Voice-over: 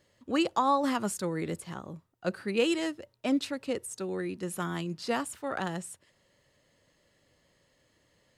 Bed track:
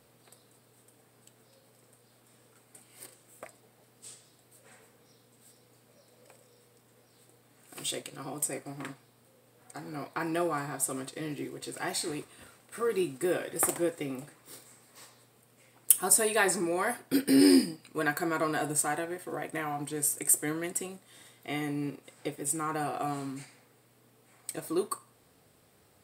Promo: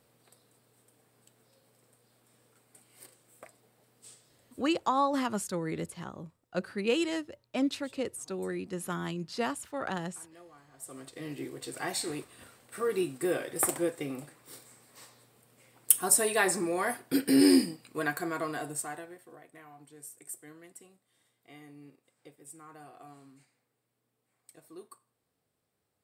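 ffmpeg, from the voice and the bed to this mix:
ffmpeg -i stem1.wav -i stem2.wav -filter_complex "[0:a]adelay=4300,volume=-1.5dB[link_01];[1:a]volume=19dB,afade=type=out:start_time=4.58:duration=0.43:silence=0.105925,afade=type=in:start_time=10.72:duration=0.77:silence=0.0668344,afade=type=out:start_time=17.76:duration=1.67:silence=0.133352[link_02];[link_01][link_02]amix=inputs=2:normalize=0" out.wav

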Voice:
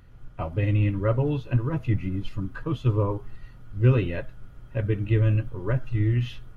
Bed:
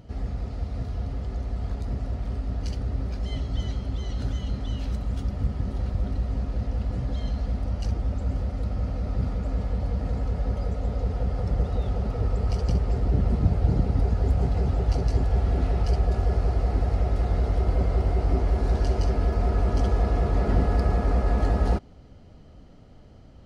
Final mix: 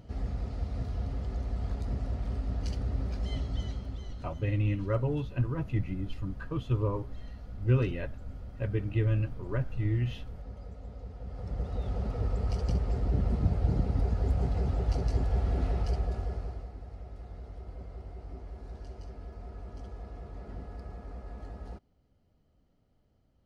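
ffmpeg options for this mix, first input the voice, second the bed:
ffmpeg -i stem1.wav -i stem2.wav -filter_complex "[0:a]adelay=3850,volume=-6dB[link_01];[1:a]volume=7.5dB,afade=type=out:start_time=3.34:duration=0.97:silence=0.223872,afade=type=in:start_time=11.2:duration=0.82:silence=0.281838,afade=type=out:start_time=15.71:duration=1.01:silence=0.177828[link_02];[link_01][link_02]amix=inputs=2:normalize=0" out.wav

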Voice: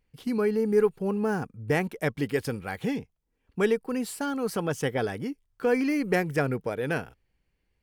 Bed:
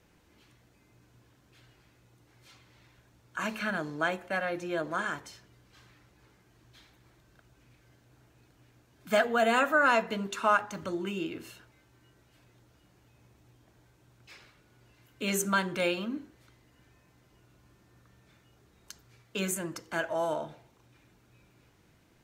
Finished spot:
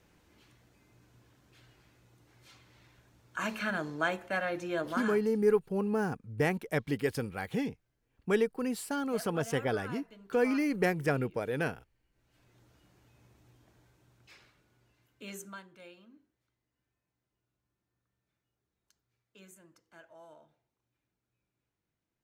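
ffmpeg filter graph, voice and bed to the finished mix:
ffmpeg -i stem1.wav -i stem2.wav -filter_complex "[0:a]adelay=4700,volume=-3.5dB[link_01];[1:a]volume=18.5dB,afade=type=out:start_time=4.87:duration=0.56:silence=0.1,afade=type=in:start_time=12.11:duration=0.52:silence=0.105925,afade=type=out:start_time=13.6:duration=2.08:silence=0.0794328[link_02];[link_01][link_02]amix=inputs=2:normalize=0" out.wav

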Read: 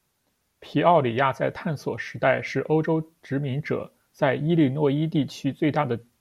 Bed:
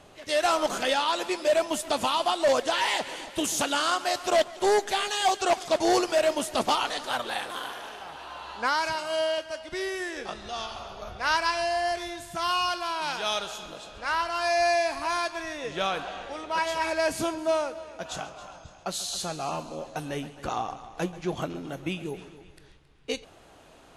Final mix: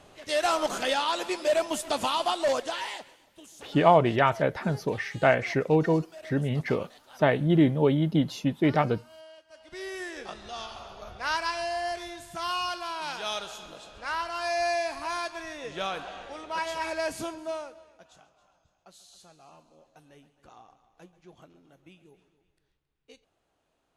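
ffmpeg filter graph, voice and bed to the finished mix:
ffmpeg -i stem1.wav -i stem2.wav -filter_complex "[0:a]adelay=3000,volume=-0.5dB[link_01];[1:a]volume=17dB,afade=type=out:start_time=2.32:duration=0.85:silence=0.0891251,afade=type=in:start_time=9.47:duration=0.52:silence=0.11885,afade=type=out:start_time=16.95:duration=1.18:silence=0.125893[link_02];[link_01][link_02]amix=inputs=2:normalize=0" out.wav

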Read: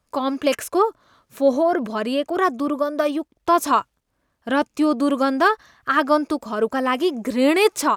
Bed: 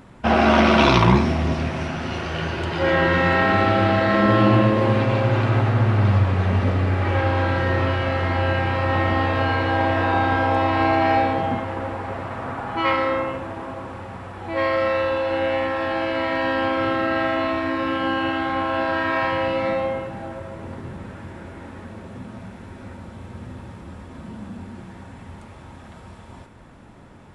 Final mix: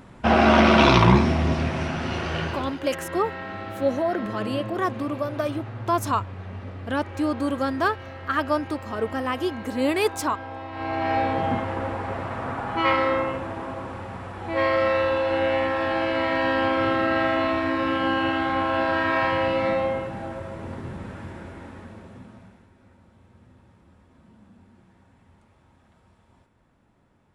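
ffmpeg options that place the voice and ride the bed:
ffmpeg -i stem1.wav -i stem2.wav -filter_complex "[0:a]adelay=2400,volume=-6dB[link_01];[1:a]volume=15.5dB,afade=type=out:start_time=2.36:duration=0.44:silence=0.158489,afade=type=in:start_time=10.71:duration=0.84:silence=0.158489,afade=type=out:start_time=21.24:duration=1.46:silence=0.141254[link_02];[link_01][link_02]amix=inputs=2:normalize=0" out.wav

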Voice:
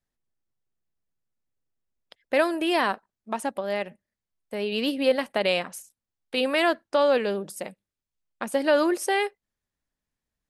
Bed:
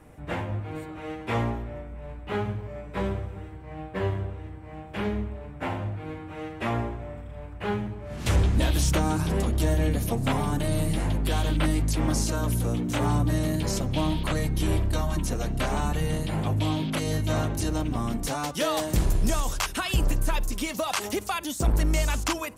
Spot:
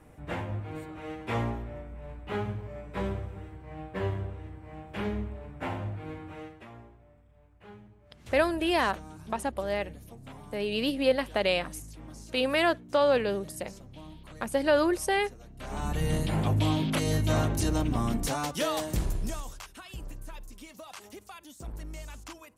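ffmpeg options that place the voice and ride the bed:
ffmpeg -i stem1.wav -i stem2.wav -filter_complex "[0:a]adelay=6000,volume=-2.5dB[link_01];[1:a]volume=17.5dB,afade=type=out:start_time=6.29:duration=0.37:silence=0.133352,afade=type=in:start_time=15.57:duration=0.58:silence=0.0891251,afade=type=out:start_time=18.14:duration=1.5:silence=0.133352[link_02];[link_01][link_02]amix=inputs=2:normalize=0" out.wav

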